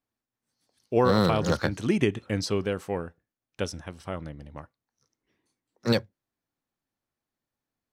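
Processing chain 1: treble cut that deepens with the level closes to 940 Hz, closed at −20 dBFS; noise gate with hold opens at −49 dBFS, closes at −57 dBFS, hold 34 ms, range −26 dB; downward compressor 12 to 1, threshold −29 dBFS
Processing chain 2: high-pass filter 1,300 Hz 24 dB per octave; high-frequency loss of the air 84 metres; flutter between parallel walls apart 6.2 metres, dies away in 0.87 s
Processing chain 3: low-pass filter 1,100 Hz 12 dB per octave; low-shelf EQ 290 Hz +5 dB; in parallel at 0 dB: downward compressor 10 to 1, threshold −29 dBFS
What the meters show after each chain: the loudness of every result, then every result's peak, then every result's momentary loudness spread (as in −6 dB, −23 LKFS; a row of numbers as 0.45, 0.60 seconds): −37.0, −34.5, −23.5 LKFS; −16.5, −14.0, −6.5 dBFS; 10, 19, 14 LU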